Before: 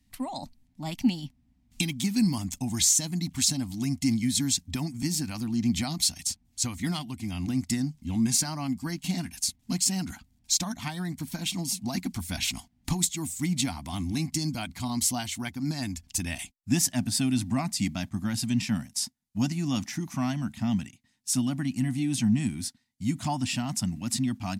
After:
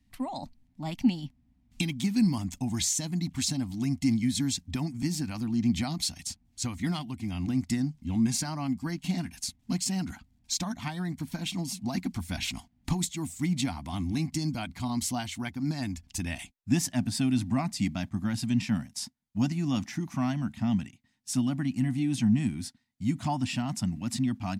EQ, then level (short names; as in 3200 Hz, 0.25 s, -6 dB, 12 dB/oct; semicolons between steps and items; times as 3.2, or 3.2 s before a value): high shelf 4500 Hz -9.5 dB; 0.0 dB